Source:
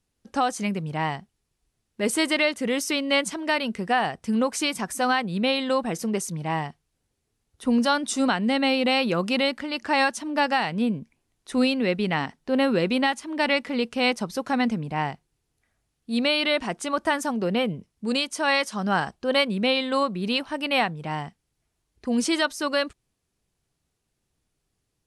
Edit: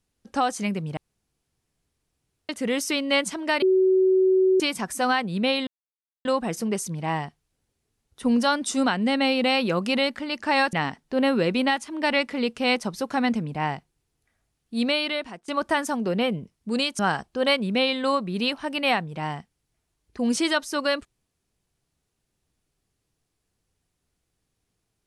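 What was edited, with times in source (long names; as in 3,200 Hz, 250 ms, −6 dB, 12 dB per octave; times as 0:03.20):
0:00.97–0:02.49: fill with room tone
0:03.62–0:04.60: beep over 376 Hz −15.5 dBFS
0:05.67: splice in silence 0.58 s
0:10.15–0:12.09: remove
0:16.20–0:16.84: fade out linear, to −21.5 dB
0:18.35–0:18.87: remove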